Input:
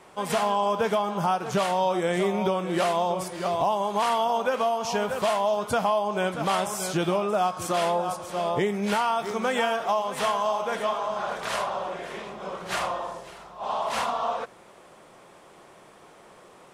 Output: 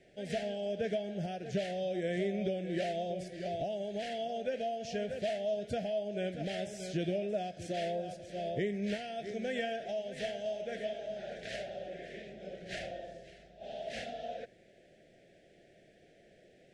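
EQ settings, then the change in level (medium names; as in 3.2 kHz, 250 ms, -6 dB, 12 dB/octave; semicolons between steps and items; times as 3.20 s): elliptic band-stop 670–1700 Hz, stop band 80 dB; distance through air 96 m; bass shelf 110 Hz +5.5 dB; -8.0 dB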